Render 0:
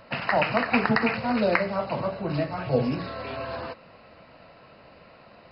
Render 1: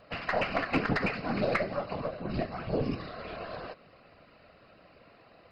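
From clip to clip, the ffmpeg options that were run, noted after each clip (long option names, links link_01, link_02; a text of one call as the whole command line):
ffmpeg -i in.wav -af "afftfilt=real='hypot(re,im)*cos(2*PI*random(0))':imag='hypot(re,im)*sin(2*PI*random(1))':win_size=512:overlap=0.75,bandreject=frequency=910:width=7,aeval=exprs='0.211*(cos(1*acos(clip(val(0)/0.211,-1,1)))-cos(1*PI/2))+0.00944*(cos(6*acos(clip(val(0)/0.211,-1,1)))-cos(6*PI/2))':channel_layout=same" out.wav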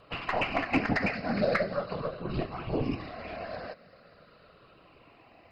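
ffmpeg -i in.wav -af "afftfilt=real='re*pow(10,7/40*sin(2*PI*(0.65*log(max(b,1)*sr/1024/100)/log(2)-(-0.42)*(pts-256)/sr)))':imag='im*pow(10,7/40*sin(2*PI*(0.65*log(max(b,1)*sr/1024/100)/log(2)-(-0.42)*(pts-256)/sr)))':win_size=1024:overlap=0.75" out.wav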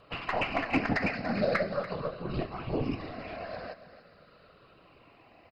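ffmpeg -i in.wav -af "aecho=1:1:288:0.188,volume=-1dB" out.wav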